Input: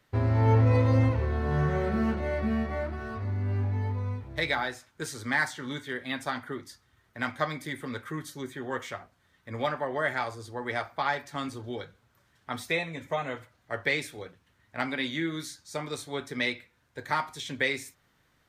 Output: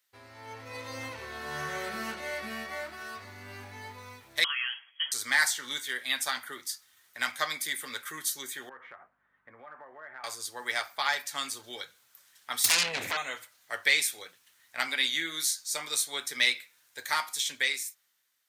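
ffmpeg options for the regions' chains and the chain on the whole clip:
-filter_complex "[0:a]asettb=1/sr,asplit=3[a][b][c];[a]atrim=end=4.444[d];[b]atrim=start=4.44:end=5.12,asetpts=PTS-STARTPTS,afade=t=in:d=0.004:c=qsin,afade=t=out:st=0.676:d=0.004:c=qsin,acompressor=threshold=-32dB:ratio=5:attack=3.2:release=140:knee=1:detection=peak,lowpass=f=2.9k:t=q:w=0.5098,lowpass=f=2.9k:t=q:w=0.6013,lowpass=f=2.9k:t=q:w=0.9,lowpass=f=2.9k:t=q:w=2.563,afreqshift=-3400[e];[c]atrim=start=5.116[f];[d][e]acrossfade=d=0.004:c1=hsin:c2=qsin[g];[g][f]acrossfade=d=0.004:c1=qsin:c2=hsin,asettb=1/sr,asplit=3[h][i][j];[h]atrim=end=8.694[k];[i]atrim=start=8.69:end=10.24,asetpts=PTS-STARTPTS,afade=t=in:d=0.004:c=qsin,afade=t=out:st=1.546:d=0.004:c=qsin,aeval=exprs='val(0)+0.000708*(sin(2*PI*50*n/s)+sin(2*PI*2*50*n/s)/2+sin(2*PI*3*50*n/s)/3+sin(2*PI*4*50*n/s)/4+sin(2*PI*5*50*n/s)/5)':c=same,lowpass=f=1.6k:w=0.5412,lowpass=f=1.6k:w=1.3066,acompressor=threshold=-41dB:ratio=5:attack=3.2:release=140:knee=1:detection=peak[l];[j]atrim=start=10.236[m];[k][l]acrossfade=d=0.004:c1=hsin:c2=qsin[n];[n][m]acrossfade=d=0.004:c1=qsin:c2=hsin,asettb=1/sr,asplit=3[o][p][q];[o]atrim=end=12.644[r];[p]atrim=start=12.64:end=13.17,asetpts=PTS-STARTPTS,afade=t=in:d=0.004:c=qsin,afade=t=out:st=0.526:d=0.004:c=qsin,bass=f=250:g=14,treble=f=4k:g=-11,acompressor=threshold=-39dB:ratio=12:attack=3.2:release=140:knee=1:detection=peak,aeval=exprs='0.0562*sin(PI/2*8.91*val(0)/0.0562)':c=same[s];[q]atrim=start=13.166[t];[r][s]acrossfade=d=0.004:c1=hsin:c2=qsin[u];[u][t]acrossfade=d=0.004:c1=qsin:c2=hsin,aderivative,dynaudnorm=f=120:g=17:m=14.5dB"

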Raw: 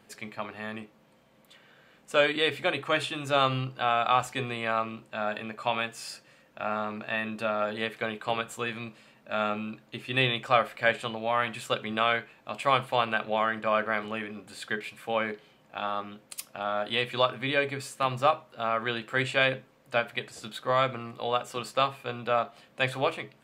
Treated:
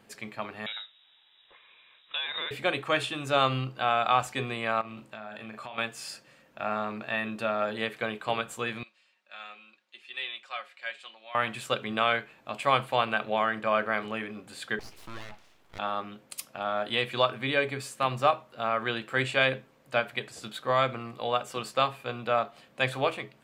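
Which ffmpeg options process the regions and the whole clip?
-filter_complex "[0:a]asettb=1/sr,asplit=3[a][b][c];[a]atrim=end=0.664[d];[b]atrim=start=0.66:end=2.51,asetpts=PTS-STARTPTS,afade=t=in:d=0.004:c=qsin,afade=t=out:st=1.846:d=0.004:c=qsin,acompressor=threshold=-29dB:ratio=6:attack=3.2:release=140:knee=1:detection=peak,lowpass=f=3.4k:t=q:w=0.5098,lowpass=f=3.4k:t=q:w=0.6013,lowpass=f=3.4k:t=q:w=0.9,lowpass=f=3.4k:t=q:w=2.563,afreqshift=-4000[e];[c]atrim=start=2.506[f];[d][e]acrossfade=d=0.004:c1=hsin:c2=qsin[g];[g][f]acrossfade=d=0.004:c1=qsin:c2=hsin,asettb=1/sr,asplit=3[h][i][j];[h]atrim=end=4.814[k];[i]atrim=start=4.81:end=5.78,asetpts=PTS-STARTPTS,afade=t=in:d=0.004:c=qsin,afade=t=out:st=0.966:d=0.004:c=qsin,asplit=2[l][m];[m]adelay=37,volume=-8.5dB[n];[l][n]amix=inputs=2:normalize=0,atrim=end_sample=42777,acompressor=threshold=-37dB:ratio=8:attack=3.2:release=140:knee=1:detection=peak[o];[j]atrim=start=5.776[p];[k][o]acrossfade=d=0.004:c1=hsin:c2=qsin[q];[q][p]acrossfade=d=0.004:c1=qsin:c2=hsin,asettb=1/sr,asplit=3[r][s][t];[r]atrim=end=8.834[u];[s]atrim=start=8.83:end=11.35,asetpts=PTS-STARTPTS,afade=t=in:d=0.004:c=qsin,afade=t=out:st=2.516:d=0.004:c=qsin,highpass=200,lowpass=3.9k,aderivative,aecho=1:1:5.5:0.55,atrim=end_sample=111132[v];[t]atrim=start=11.346[w];[u][v]acrossfade=d=0.004:c1=hsin:c2=qsin[x];[x][w]acrossfade=d=0.004:c1=qsin:c2=hsin,asettb=1/sr,asplit=3[y][z][aa];[y]atrim=end=14.794[ab];[z]atrim=start=14.79:end=15.79,asetpts=PTS-STARTPTS,afade=t=in:d=0.004:c=qsin,afade=t=out:st=0.996:d=0.004:c=qsin,acompressor=threshold=-40dB:ratio=2.5:attack=3.2:release=140:knee=1:detection=peak,aeval=exprs='abs(val(0))':c=same[ac];[aa]atrim=start=15.786[ad];[ab][ac]acrossfade=d=0.004:c1=hsin:c2=qsin[ae];[ae][ad]acrossfade=d=0.004:c1=qsin:c2=hsin"

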